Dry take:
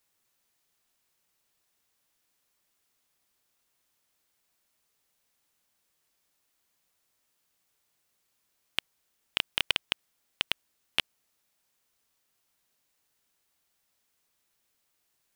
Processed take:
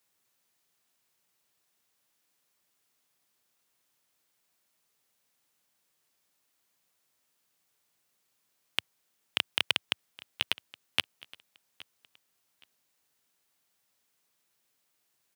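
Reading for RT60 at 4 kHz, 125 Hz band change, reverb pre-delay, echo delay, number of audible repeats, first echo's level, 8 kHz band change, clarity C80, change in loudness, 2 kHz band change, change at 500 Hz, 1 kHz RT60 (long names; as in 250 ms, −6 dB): no reverb audible, −1.5 dB, no reverb audible, 819 ms, 2, −21.0 dB, 0.0 dB, no reverb audible, 0.0 dB, 0.0 dB, 0.0 dB, no reverb audible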